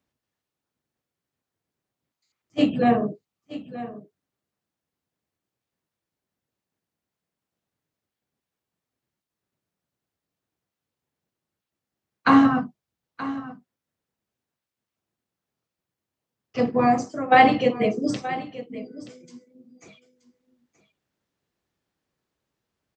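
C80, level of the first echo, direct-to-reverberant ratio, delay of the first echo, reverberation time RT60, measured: no reverb, -15.0 dB, no reverb, 926 ms, no reverb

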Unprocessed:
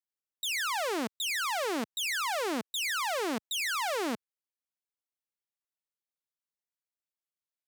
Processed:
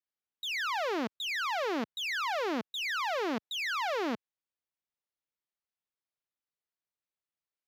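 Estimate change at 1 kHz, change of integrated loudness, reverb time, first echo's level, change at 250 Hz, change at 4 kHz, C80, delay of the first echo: 0.0 dB, -1.5 dB, no reverb, no echo, 0.0 dB, -2.5 dB, no reverb, no echo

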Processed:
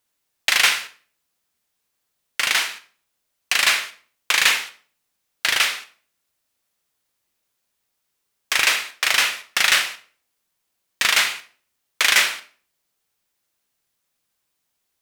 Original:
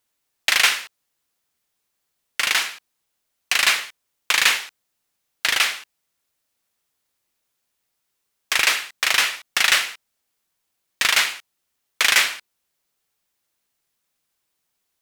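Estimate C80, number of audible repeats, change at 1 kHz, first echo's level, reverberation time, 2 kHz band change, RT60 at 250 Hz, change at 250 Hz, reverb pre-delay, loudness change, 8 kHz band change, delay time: 18.0 dB, no echo, +0.5 dB, no echo, 0.45 s, +0.5 dB, 0.55 s, +0.5 dB, 20 ms, +0.5 dB, +0.5 dB, no echo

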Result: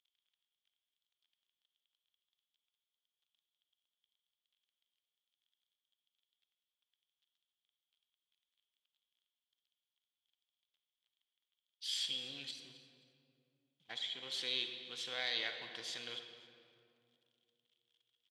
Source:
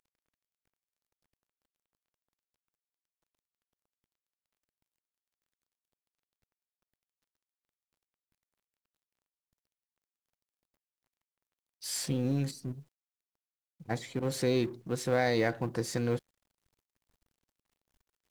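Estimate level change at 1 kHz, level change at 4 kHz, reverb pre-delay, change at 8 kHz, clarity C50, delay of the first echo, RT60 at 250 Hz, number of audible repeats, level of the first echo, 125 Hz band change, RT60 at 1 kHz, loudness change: -16.0 dB, +5.5 dB, 36 ms, -10.5 dB, 6.5 dB, 263 ms, 3.1 s, 2, -17.5 dB, -32.0 dB, 2.3 s, -8.0 dB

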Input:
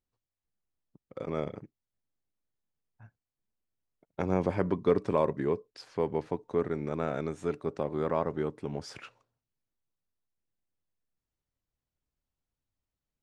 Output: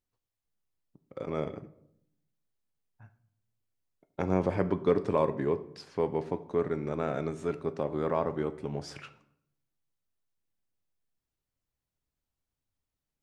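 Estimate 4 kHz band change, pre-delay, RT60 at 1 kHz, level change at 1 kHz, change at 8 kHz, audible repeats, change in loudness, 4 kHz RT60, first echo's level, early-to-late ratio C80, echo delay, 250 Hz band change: 0.0 dB, 6 ms, 0.70 s, +0.5 dB, no reading, no echo, +0.5 dB, 0.50 s, no echo, 18.5 dB, no echo, +0.5 dB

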